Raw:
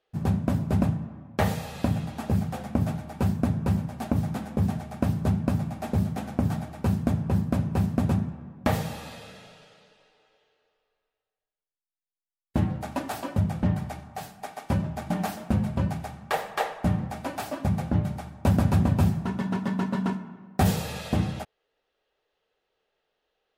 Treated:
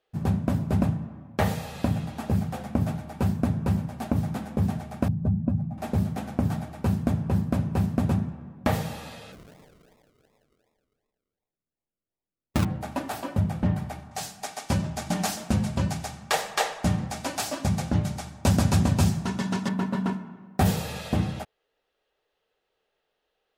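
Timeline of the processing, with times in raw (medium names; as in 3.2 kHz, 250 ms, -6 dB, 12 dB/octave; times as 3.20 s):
5.08–5.78 s: spectral contrast enhancement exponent 1.6
9.32–12.65 s: decimation with a swept rate 41×, swing 60% 2.7 Hz
14.11–19.69 s: peaking EQ 6.4 kHz +13.5 dB 2 oct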